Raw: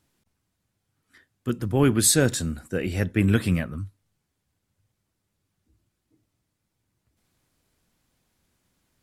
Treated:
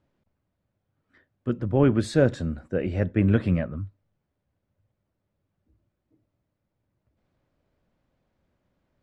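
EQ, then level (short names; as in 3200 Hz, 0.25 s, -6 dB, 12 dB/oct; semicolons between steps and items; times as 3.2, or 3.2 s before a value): LPF 1400 Hz 6 dB/oct; air absorption 81 m; bell 580 Hz +8 dB 0.34 oct; 0.0 dB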